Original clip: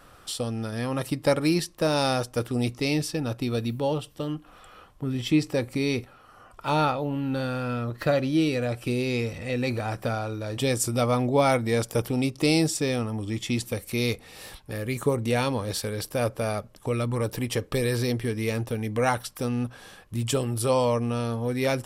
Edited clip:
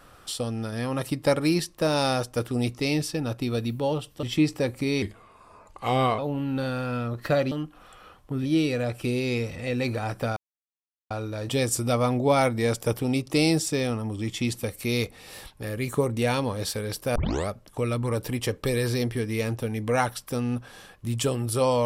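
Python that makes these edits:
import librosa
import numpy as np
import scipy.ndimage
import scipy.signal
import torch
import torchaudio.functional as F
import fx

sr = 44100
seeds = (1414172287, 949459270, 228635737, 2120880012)

y = fx.edit(x, sr, fx.move(start_s=4.23, length_s=0.94, to_s=8.28),
    fx.speed_span(start_s=5.96, length_s=0.99, speed=0.85),
    fx.insert_silence(at_s=10.19, length_s=0.74),
    fx.tape_start(start_s=16.24, length_s=0.33), tone=tone)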